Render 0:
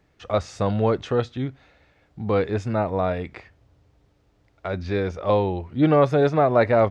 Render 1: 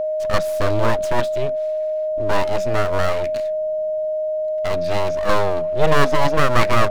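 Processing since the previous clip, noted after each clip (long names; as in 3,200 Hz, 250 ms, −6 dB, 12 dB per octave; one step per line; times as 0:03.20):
full-wave rectification
high-shelf EQ 5,200 Hz +6 dB
steady tone 620 Hz −24 dBFS
level +4.5 dB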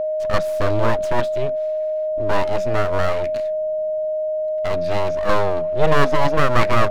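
high-shelf EQ 4,500 Hz −6.5 dB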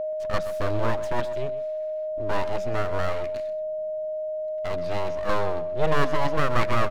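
single-tap delay 128 ms −14.5 dB
level −6.5 dB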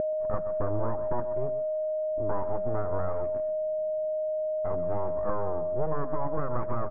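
downward compressor, threshold −22 dBFS, peak gain reduction 8.5 dB
low-pass filter 1,200 Hz 24 dB per octave
upward compression, threshold −29 dBFS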